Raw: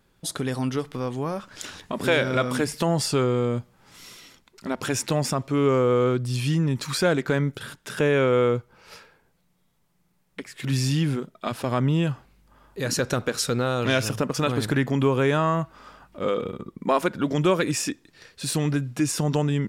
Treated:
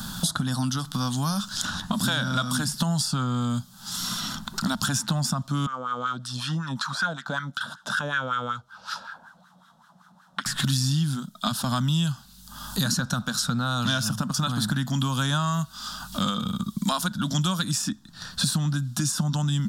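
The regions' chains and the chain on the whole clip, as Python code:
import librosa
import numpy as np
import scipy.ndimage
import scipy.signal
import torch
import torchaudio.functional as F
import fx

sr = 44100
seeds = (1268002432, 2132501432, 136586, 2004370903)

y = fx.chain(x, sr, fx.notch(hz=4600.0, q=24.0),
    fx.wah_lfo(hz=5.3, low_hz=520.0, high_hz=1600.0, q=3.1), at=(5.66, 10.46))
y = fx.curve_eq(y, sr, hz=(110.0, 210.0, 420.0, 700.0, 1500.0, 2200.0, 3500.0), db=(0, 9, -23, -3, 4, -17, 8))
y = fx.band_squash(y, sr, depth_pct=100)
y = y * 10.0 ** (-2.5 / 20.0)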